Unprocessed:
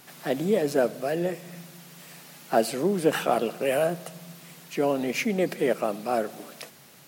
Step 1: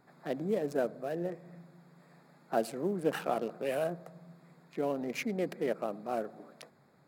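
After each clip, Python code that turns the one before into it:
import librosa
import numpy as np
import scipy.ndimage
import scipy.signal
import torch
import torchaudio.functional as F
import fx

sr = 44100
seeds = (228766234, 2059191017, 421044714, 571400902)

y = fx.wiener(x, sr, points=15)
y = F.gain(torch.from_numpy(y), -8.0).numpy()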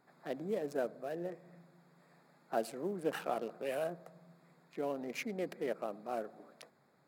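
y = fx.low_shelf(x, sr, hz=180.0, db=-8.0)
y = F.gain(torch.from_numpy(y), -3.5).numpy()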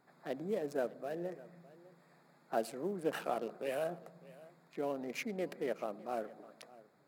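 y = x + 10.0 ** (-20.0 / 20.0) * np.pad(x, (int(604 * sr / 1000.0), 0))[:len(x)]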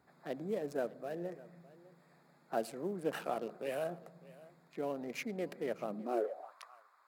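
y = fx.filter_sweep_highpass(x, sr, from_hz=73.0, to_hz=1100.0, start_s=5.63, end_s=6.56, q=5.3)
y = F.gain(torch.from_numpy(y), -1.0).numpy()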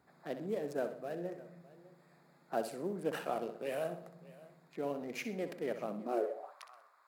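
y = fx.echo_feedback(x, sr, ms=63, feedback_pct=39, wet_db=-10.5)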